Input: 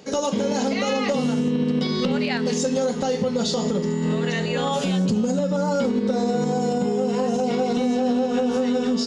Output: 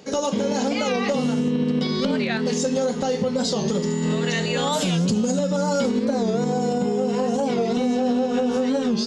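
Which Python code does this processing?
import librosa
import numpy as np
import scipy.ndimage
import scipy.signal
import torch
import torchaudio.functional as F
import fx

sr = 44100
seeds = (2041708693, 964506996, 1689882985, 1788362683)

y = fx.high_shelf(x, sr, hz=3700.0, db=8.5, at=(3.68, 6.05))
y = fx.record_warp(y, sr, rpm=45.0, depth_cents=160.0)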